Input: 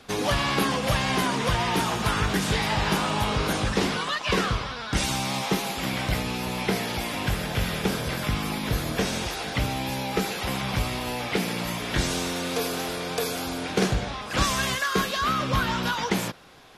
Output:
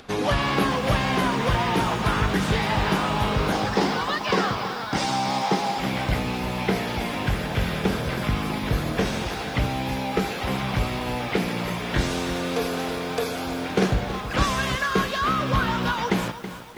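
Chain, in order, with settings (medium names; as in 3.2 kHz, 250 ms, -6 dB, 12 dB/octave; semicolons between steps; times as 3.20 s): treble shelf 4.3 kHz -10.5 dB; upward compressor, threshold -47 dBFS; 3.52–5.80 s: cabinet simulation 150–9500 Hz, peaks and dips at 820 Hz +7 dB, 2.6 kHz -3 dB, 5 kHz +6 dB; bit-crushed delay 325 ms, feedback 55%, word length 7-bit, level -12 dB; trim +2.5 dB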